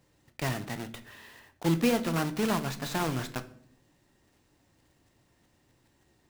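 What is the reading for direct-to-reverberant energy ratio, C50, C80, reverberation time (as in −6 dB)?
9.5 dB, 15.5 dB, 19.5 dB, 0.60 s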